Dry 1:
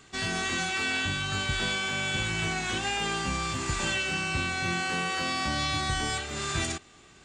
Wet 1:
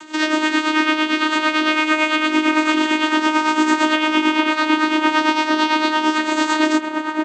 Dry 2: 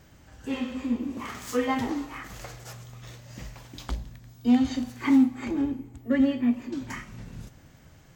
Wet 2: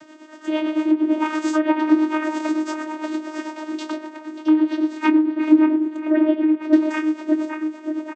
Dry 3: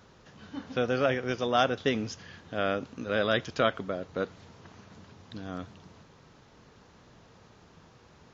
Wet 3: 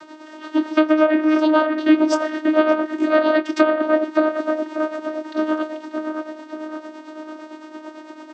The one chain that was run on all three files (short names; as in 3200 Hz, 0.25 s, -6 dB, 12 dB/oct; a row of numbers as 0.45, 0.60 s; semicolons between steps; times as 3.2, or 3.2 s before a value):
treble ducked by the level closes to 2800 Hz, closed at -21 dBFS; low shelf 240 Hz -11 dB; compressor 4:1, threshold -34 dBFS; dark delay 0.588 s, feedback 58%, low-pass 2000 Hz, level -5 dB; tremolo 8.9 Hz, depth 60%; doubler 24 ms -13 dB; vocoder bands 16, saw 310 Hz; normalise peaks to -3 dBFS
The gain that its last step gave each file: +21.5, +22.0, +24.0 dB